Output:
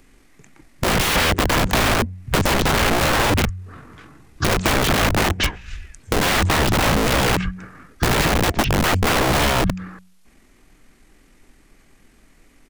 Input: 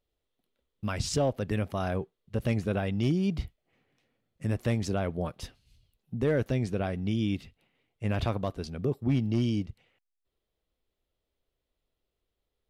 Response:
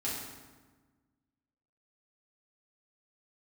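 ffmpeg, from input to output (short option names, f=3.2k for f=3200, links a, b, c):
-filter_complex "[0:a]asetrate=26222,aresample=44100,atempo=1.68179,bandreject=f=92.22:t=h:w=4,bandreject=f=184.44:t=h:w=4,aeval=exprs='(mod(47.3*val(0)+1,2)-1)/47.3':c=same,acrossover=split=96|3500[a][b][c];[a]acompressor=threshold=-53dB:ratio=4[d];[b]acompressor=threshold=-49dB:ratio=4[e];[c]acompressor=threshold=-58dB:ratio=4[f];[d][e][f]amix=inputs=3:normalize=0,alimiter=level_in=32dB:limit=-1dB:release=50:level=0:latency=1,volume=-1dB"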